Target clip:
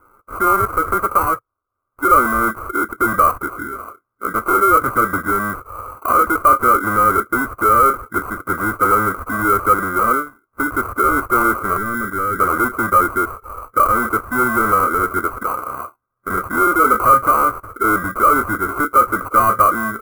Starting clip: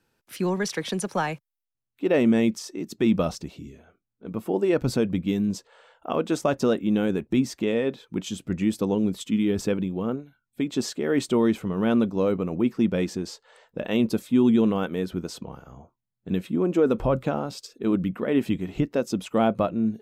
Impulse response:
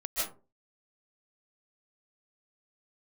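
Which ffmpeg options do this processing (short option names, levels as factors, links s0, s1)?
-filter_complex "[0:a]bandreject=f=460:w=12,asplit=2[s0][s1];[s1]highpass=f=720:p=1,volume=39.8,asoftclip=type=tanh:threshold=0.335[s2];[s0][s2]amix=inputs=2:normalize=0,lowpass=f=3300:p=1,volume=0.501,equalizer=f=400:t=o:w=2.9:g=11.5,asettb=1/sr,asplit=3[s3][s4][s5];[s3]atrim=end=11.774[s6];[s4]atrim=start=11.77:end=12.4,asetpts=PTS-STARTPTS,afade=t=in:d=0.004:c=qsin,afade=t=out:st=0.626:d=0.004:c=qsin,acrossover=split=360[s7][s8];[s8]acompressor=threshold=0.0501:ratio=6[s9];[s7][s9]amix=inputs=2:normalize=0[s10];[s5]atrim=start=12.396[s11];[s6][s10]acrossfade=d=0.004:c1=hsin:c2=qsin[s12];[s12][s11]acrossfade=d=0.004:c1=qsin:c2=hsin,acrusher=samples=25:mix=1:aa=0.000001,firequalizer=gain_entry='entry(110,0);entry(150,-17);entry(310,-9);entry(490,-7);entry(840,-11);entry(1200,12);entry(2700,-24);entry(4300,-25);entry(11000,0)':delay=0.05:min_phase=1,volume=0.531"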